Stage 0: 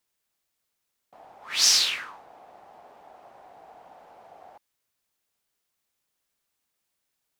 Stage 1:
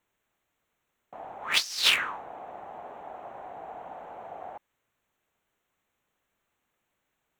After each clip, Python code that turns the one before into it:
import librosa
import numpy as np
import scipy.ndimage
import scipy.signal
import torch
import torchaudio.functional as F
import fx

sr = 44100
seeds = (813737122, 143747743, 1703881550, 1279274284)

y = fx.wiener(x, sr, points=9)
y = fx.high_shelf(y, sr, hz=10000.0, db=8.0)
y = fx.over_compress(y, sr, threshold_db=-27.0, ratio=-0.5)
y = y * 10.0 ** (2.5 / 20.0)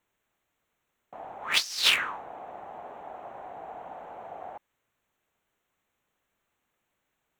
y = x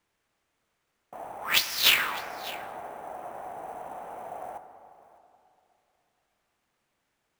y = fx.sample_hold(x, sr, seeds[0], rate_hz=17000.0, jitter_pct=0)
y = y + 10.0 ** (-19.0 / 20.0) * np.pad(y, (int(604 * sr / 1000.0), 0))[:len(y)]
y = fx.rev_plate(y, sr, seeds[1], rt60_s=2.9, hf_ratio=0.3, predelay_ms=0, drr_db=8.5)
y = y * 10.0 ** (1.5 / 20.0)